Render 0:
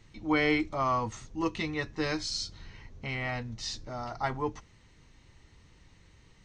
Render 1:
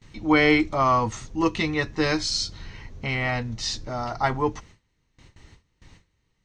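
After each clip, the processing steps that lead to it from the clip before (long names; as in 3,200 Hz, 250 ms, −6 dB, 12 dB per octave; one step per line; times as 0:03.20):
noise gate with hold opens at −47 dBFS
level +8 dB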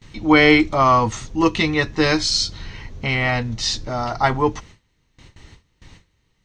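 parametric band 3,400 Hz +2.5 dB 0.71 octaves
level +5.5 dB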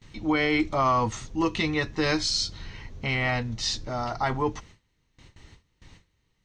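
brickwall limiter −9 dBFS, peak gain reduction 7 dB
level −6 dB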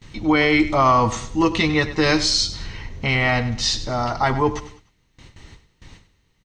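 repeating echo 99 ms, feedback 35%, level −14 dB
level +7 dB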